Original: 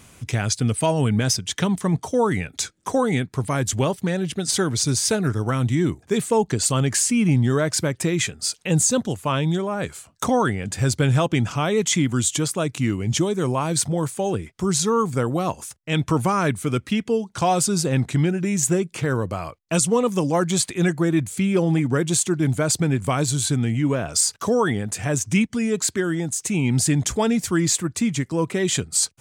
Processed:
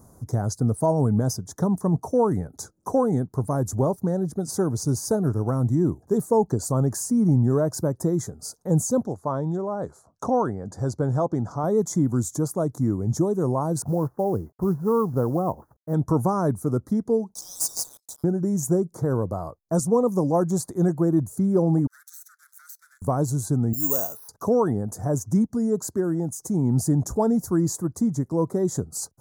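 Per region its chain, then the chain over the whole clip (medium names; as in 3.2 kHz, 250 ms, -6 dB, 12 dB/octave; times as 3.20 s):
9.05–11.64 s: low-pass 6 kHz + bass shelf 260 Hz -6.5 dB
13.82–15.94 s: inverse Chebyshev low-pass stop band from 4.5 kHz, stop band 50 dB + companded quantiser 6-bit
17.34–18.24 s: steep high-pass 2.6 kHz 96 dB/octave + waveshaping leveller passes 3
21.87–23.02 s: comb filter that takes the minimum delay 0.49 ms + steep high-pass 1.4 kHz 72 dB/octave + compression 16:1, threshold -31 dBFS
23.73–24.29 s: high-pass 700 Hz 6 dB/octave + distance through air 60 m + careless resampling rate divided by 6×, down filtered, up zero stuff
whole clip: Chebyshev band-stop 850–7900 Hz, order 2; peaking EQ 8.2 kHz -13 dB 0.45 oct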